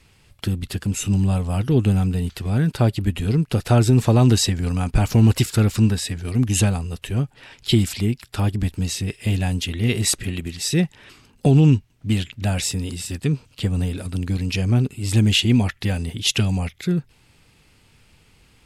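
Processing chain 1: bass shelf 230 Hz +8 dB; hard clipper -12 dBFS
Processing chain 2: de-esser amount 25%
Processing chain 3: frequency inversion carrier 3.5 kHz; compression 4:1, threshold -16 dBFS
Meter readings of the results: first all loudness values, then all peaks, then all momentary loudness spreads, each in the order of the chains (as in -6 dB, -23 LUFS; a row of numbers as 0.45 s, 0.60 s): -18.5 LUFS, -21.0 LUFS, -19.5 LUFS; -12.0 dBFS, -6.0 dBFS, -6.5 dBFS; 6 LU, 10 LU, 6 LU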